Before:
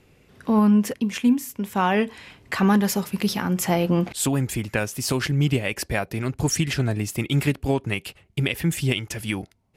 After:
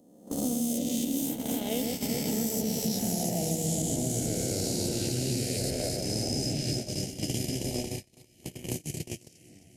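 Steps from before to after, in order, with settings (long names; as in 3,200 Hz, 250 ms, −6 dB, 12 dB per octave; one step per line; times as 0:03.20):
peak hold with a rise ahead of every peak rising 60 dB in 2.22 s
source passing by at 0:03.11, 39 m/s, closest 17 metres
reversed playback
downward compressor 10 to 1, threshold −30 dBFS, peak gain reduction 15 dB
reversed playback
drawn EQ curve 720 Hz 0 dB, 1,100 Hz −27 dB, 3,200 Hz −5 dB, 5,200 Hz +1 dB
on a send: delay that swaps between a low-pass and a high-pass 131 ms, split 2,000 Hz, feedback 84%, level −3 dB
on the sum: amplitude modulation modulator 70 Hz, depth 20%
high-shelf EQ 4,000 Hz +3 dB
noise gate −36 dBFS, range −42 dB
multiband upward and downward compressor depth 100%
level +2.5 dB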